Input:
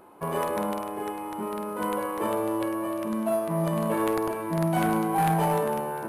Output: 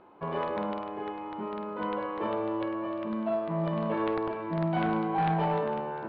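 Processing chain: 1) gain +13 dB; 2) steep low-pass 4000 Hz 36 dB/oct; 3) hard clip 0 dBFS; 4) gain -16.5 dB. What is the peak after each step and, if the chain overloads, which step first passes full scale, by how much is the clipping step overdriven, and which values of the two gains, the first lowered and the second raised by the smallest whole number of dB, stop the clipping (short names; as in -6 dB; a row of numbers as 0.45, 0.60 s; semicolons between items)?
-5.5, -3.5, -3.5, -20.0 dBFS; no overload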